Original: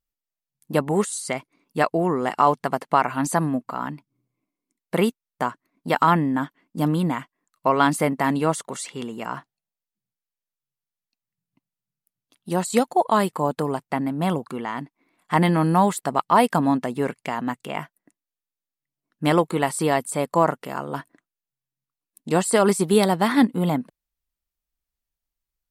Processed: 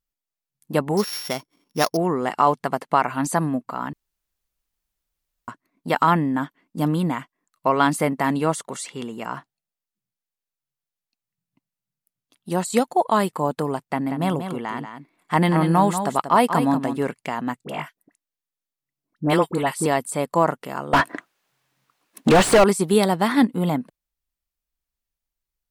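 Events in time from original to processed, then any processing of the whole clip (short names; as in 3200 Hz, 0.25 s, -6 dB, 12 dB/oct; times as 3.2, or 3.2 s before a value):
0.97–1.97 sample sorter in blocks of 8 samples
3.93–5.48 room tone
13.81–17.03 echo 0.186 s -8.5 dB
17.64–19.86 dispersion highs, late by 47 ms, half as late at 1100 Hz
20.93–22.64 overdrive pedal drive 38 dB, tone 1600 Hz, clips at -5.5 dBFS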